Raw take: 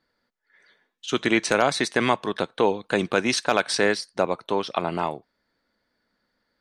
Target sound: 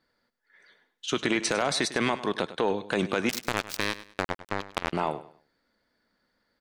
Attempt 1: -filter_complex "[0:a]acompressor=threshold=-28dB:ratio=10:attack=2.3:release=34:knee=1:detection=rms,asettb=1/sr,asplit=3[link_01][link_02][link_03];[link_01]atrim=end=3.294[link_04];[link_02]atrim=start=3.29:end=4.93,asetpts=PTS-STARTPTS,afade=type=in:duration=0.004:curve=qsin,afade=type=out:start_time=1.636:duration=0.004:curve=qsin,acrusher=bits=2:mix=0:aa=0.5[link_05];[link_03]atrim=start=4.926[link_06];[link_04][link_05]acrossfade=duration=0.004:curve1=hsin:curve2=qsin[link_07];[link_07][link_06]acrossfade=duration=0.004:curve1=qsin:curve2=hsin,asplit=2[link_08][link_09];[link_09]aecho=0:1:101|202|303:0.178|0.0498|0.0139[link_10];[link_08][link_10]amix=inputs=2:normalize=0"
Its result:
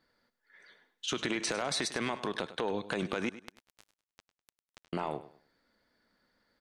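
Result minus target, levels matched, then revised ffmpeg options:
downward compressor: peak gain reduction +7.5 dB
-filter_complex "[0:a]acompressor=threshold=-19.5dB:ratio=10:attack=2.3:release=34:knee=1:detection=rms,asettb=1/sr,asplit=3[link_01][link_02][link_03];[link_01]atrim=end=3.294[link_04];[link_02]atrim=start=3.29:end=4.93,asetpts=PTS-STARTPTS,afade=type=in:duration=0.004:curve=qsin,afade=type=out:start_time=1.636:duration=0.004:curve=qsin,acrusher=bits=2:mix=0:aa=0.5[link_05];[link_03]atrim=start=4.926[link_06];[link_04][link_05]acrossfade=duration=0.004:curve1=hsin:curve2=qsin[link_07];[link_07][link_06]acrossfade=duration=0.004:curve1=qsin:curve2=hsin,asplit=2[link_08][link_09];[link_09]aecho=0:1:101|202|303:0.178|0.0498|0.0139[link_10];[link_08][link_10]amix=inputs=2:normalize=0"

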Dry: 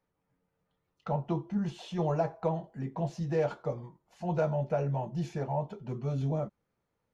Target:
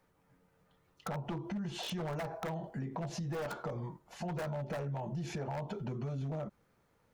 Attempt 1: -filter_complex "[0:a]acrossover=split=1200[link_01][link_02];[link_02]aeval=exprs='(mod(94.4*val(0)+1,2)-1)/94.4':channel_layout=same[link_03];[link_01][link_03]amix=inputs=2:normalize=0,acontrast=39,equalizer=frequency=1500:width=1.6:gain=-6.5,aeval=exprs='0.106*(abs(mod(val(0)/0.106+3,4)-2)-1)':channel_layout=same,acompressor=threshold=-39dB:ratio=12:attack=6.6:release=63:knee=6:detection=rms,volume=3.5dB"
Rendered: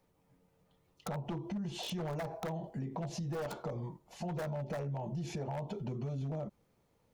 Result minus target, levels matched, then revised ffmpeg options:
2,000 Hz band −3.0 dB
-filter_complex "[0:a]acrossover=split=1200[link_01][link_02];[link_02]aeval=exprs='(mod(94.4*val(0)+1,2)-1)/94.4':channel_layout=same[link_03];[link_01][link_03]amix=inputs=2:normalize=0,acontrast=39,equalizer=frequency=1500:width=1.6:gain=2.5,aeval=exprs='0.106*(abs(mod(val(0)/0.106+3,4)-2)-1)':channel_layout=same,acompressor=threshold=-39dB:ratio=12:attack=6.6:release=63:knee=6:detection=rms,volume=3.5dB"

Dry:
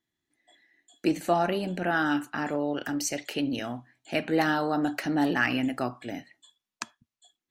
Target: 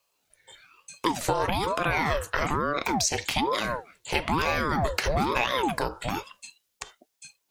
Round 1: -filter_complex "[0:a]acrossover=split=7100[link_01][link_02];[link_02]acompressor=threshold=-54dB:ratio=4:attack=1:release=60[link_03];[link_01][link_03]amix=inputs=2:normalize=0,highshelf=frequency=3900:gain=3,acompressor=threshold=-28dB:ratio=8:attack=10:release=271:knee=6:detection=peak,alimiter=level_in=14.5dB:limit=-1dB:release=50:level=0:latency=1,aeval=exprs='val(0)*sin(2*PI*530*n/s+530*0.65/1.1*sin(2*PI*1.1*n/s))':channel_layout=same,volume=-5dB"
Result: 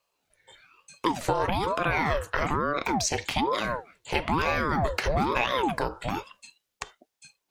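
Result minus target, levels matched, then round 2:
8,000 Hz band −3.0 dB
-filter_complex "[0:a]acrossover=split=7100[link_01][link_02];[link_02]acompressor=threshold=-54dB:ratio=4:attack=1:release=60[link_03];[link_01][link_03]amix=inputs=2:normalize=0,highshelf=frequency=3900:gain=11,acompressor=threshold=-28dB:ratio=8:attack=10:release=271:knee=6:detection=peak,alimiter=level_in=14.5dB:limit=-1dB:release=50:level=0:latency=1,aeval=exprs='val(0)*sin(2*PI*530*n/s+530*0.65/1.1*sin(2*PI*1.1*n/s))':channel_layout=same,volume=-5dB"

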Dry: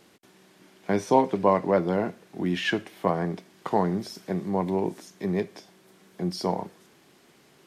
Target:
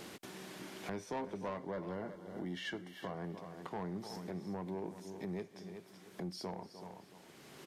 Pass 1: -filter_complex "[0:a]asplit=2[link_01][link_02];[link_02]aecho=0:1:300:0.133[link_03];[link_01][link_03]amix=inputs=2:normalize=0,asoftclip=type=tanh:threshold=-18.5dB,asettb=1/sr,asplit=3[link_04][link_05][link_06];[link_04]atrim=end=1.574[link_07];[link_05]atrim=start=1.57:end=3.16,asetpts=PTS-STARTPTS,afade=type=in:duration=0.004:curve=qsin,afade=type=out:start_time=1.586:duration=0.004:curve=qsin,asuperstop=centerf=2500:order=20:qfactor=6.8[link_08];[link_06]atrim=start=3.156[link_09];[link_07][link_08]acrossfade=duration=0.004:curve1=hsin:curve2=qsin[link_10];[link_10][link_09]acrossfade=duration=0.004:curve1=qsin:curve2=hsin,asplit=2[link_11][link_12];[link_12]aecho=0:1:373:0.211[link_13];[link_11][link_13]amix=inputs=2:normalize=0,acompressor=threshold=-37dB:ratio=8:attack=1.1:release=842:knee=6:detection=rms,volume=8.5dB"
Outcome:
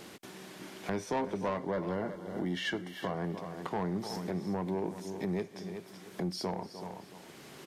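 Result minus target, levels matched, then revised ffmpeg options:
downward compressor: peak gain reduction −7.5 dB
-filter_complex "[0:a]asplit=2[link_01][link_02];[link_02]aecho=0:1:300:0.133[link_03];[link_01][link_03]amix=inputs=2:normalize=0,asoftclip=type=tanh:threshold=-18.5dB,asettb=1/sr,asplit=3[link_04][link_05][link_06];[link_04]atrim=end=1.574[link_07];[link_05]atrim=start=1.57:end=3.16,asetpts=PTS-STARTPTS,afade=type=in:duration=0.004:curve=qsin,afade=type=out:start_time=1.586:duration=0.004:curve=qsin,asuperstop=centerf=2500:order=20:qfactor=6.8[link_08];[link_06]atrim=start=3.156[link_09];[link_07][link_08]acrossfade=duration=0.004:curve1=hsin:curve2=qsin[link_10];[link_10][link_09]acrossfade=duration=0.004:curve1=qsin:curve2=hsin,asplit=2[link_11][link_12];[link_12]aecho=0:1:373:0.211[link_13];[link_11][link_13]amix=inputs=2:normalize=0,acompressor=threshold=-45.5dB:ratio=8:attack=1.1:release=842:knee=6:detection=rms,volume=8.5dB"

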